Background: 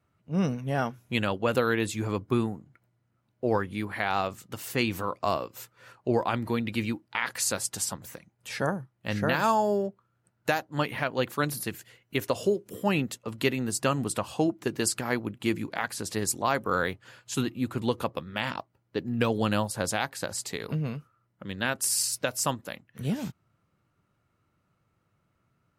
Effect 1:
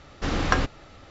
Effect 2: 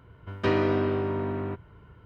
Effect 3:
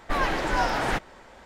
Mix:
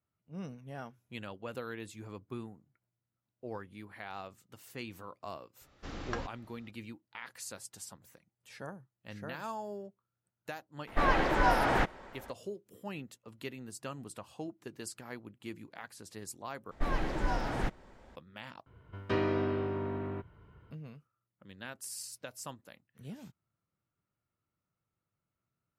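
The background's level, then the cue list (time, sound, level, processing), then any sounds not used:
background −16 dB
0:05.61: mix in 1 −16.5 dB
0:10.87: mix in 3 −1 dB + high-shelf EQ 4,000 Hz −11 dB
0:16.71: overwrite with 3 −13 dB + low-shelf EQ 390 Hz +12 dB
0:18.66: overwrite with 2 −6.5 dB

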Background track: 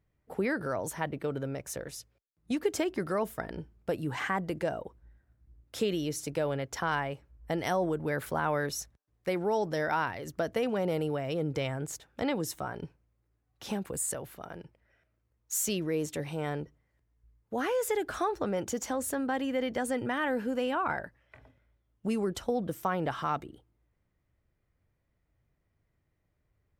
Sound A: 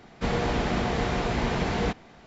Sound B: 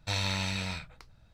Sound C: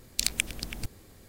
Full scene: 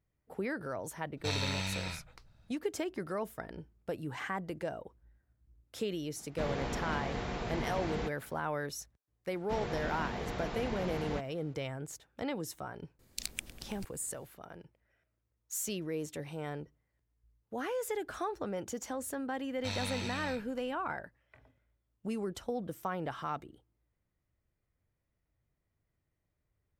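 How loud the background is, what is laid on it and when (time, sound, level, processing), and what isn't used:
background track −6 dB
0:01.17: mix in B −3.5 dB
0:06.16: mix in A −10.5 dB
0:09.28: mix in A −12 dB
0:12.99: mix in C −11.5 dB
0:19.57: mix in B −7 dB

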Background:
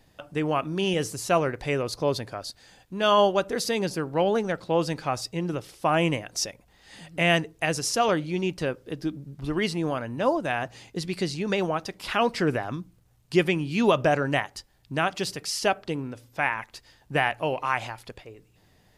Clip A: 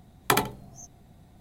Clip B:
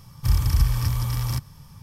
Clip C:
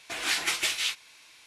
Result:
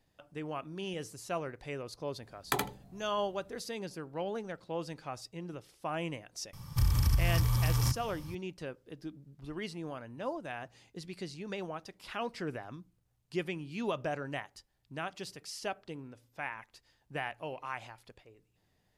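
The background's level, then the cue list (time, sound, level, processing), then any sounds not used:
background −13.5 dB
0:02.22: mix in A −9 dB
0:06.53: mix in B −0.5 dB + downward compressor 3 to 1, threshold −24 dBFS
not used: C

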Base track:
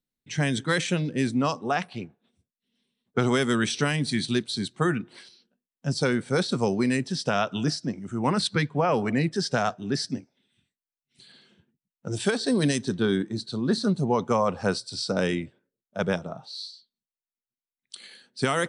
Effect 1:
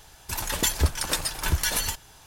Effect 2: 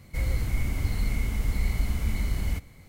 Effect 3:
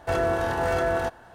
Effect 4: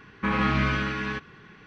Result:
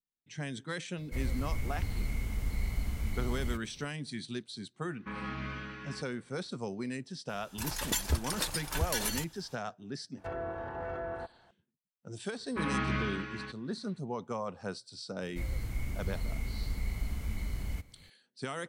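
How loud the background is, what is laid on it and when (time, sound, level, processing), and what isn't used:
base track −13.5 dB
0:00.98: mix in 2 −7 dB
0:04.83: mix in 4 −15 dB
0:07.29: mix in 1 −7.5 dB
0:10.17: mix in 3 −13.5 dB + treble cut that deepens with the level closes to 1,900 Hz, closed at −22.5 dBFS
0:12.33: mix in 4 −7.5 dB + expander for the loud parts, over −37 dBFS
0:15.22: mix in 2 −8.5 dB

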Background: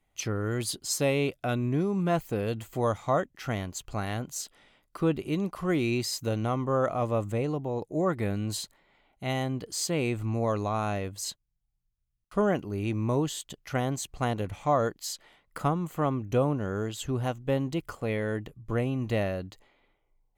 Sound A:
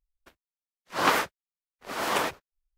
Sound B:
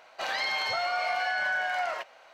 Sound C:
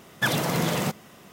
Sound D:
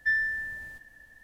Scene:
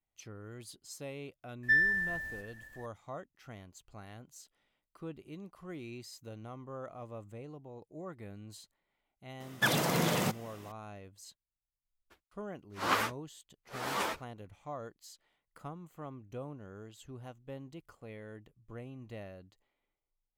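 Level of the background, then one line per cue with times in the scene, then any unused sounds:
background −17.5 dB
0:01.63: mix in D
0:09.40: mix in C −4 dB + low-shelf EQ 74 Hz −8.5 dB
0:11.84: mix in A −4 dB + string-ensemble chorus
not used: B

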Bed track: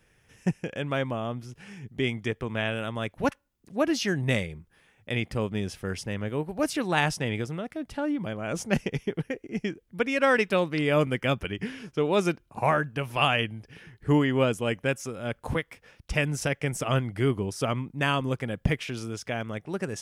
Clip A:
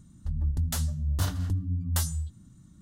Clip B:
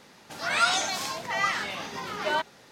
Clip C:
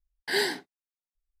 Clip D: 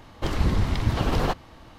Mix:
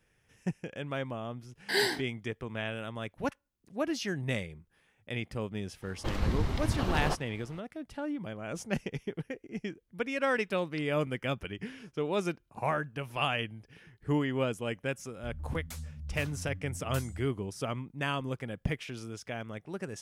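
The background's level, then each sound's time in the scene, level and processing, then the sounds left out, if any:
bed track −7 dB
0:01.41: mix in C −1.5 dB
0:05.82: mix in D −7 dB
0:14.98: mix in A −13 dB
not used: B

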